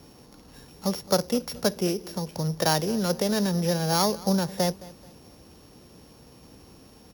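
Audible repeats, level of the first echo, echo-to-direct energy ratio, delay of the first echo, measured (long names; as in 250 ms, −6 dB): 2, −20.0 dB, −19.5 dB, 216 ms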